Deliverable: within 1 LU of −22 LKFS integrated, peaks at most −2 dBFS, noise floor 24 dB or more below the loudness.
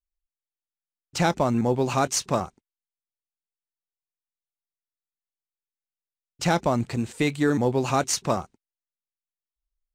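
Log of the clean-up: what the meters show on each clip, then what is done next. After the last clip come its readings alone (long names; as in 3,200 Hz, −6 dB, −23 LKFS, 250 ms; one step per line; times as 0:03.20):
integrated loudness −24.5 LKFS; sample peak −10.5 dBFS; target loudness −22.0 LKFS
→ level +2.5 dB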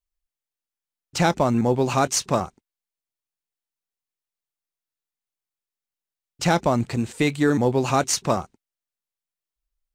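integrated loudness −22.0 LKFS; sample peak −8.0 dBFS; background noise floor −90 dBFS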